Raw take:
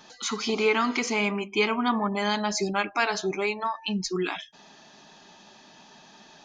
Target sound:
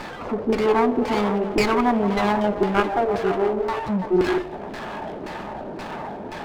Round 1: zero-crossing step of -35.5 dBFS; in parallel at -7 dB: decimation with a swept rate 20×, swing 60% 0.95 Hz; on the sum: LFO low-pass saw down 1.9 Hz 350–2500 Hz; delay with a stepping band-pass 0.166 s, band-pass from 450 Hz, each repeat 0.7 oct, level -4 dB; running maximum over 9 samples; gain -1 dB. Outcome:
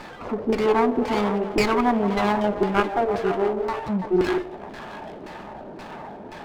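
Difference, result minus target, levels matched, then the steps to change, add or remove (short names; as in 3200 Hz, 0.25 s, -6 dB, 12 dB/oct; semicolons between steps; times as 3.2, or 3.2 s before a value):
zero-crossing step: distortion -5 dB
change: zero-crossing step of -29 dBFS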